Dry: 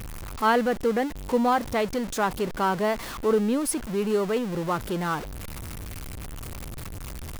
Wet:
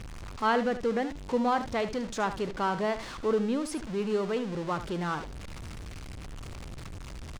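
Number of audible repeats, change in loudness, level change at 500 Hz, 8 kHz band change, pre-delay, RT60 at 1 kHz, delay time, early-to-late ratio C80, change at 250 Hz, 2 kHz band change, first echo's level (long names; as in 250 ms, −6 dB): 1, −4.5 dB, −4.5 dB, −10.5 dB, no reverb audible, no reverb audible, 75 ms, no reverb audible, −4.5 dB, −4.0 dB, −12.0 dB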